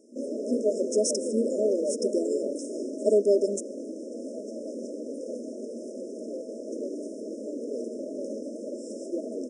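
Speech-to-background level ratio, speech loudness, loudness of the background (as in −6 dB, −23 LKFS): 6.5 dB, −27.5 LKFS, −34.0 LKFS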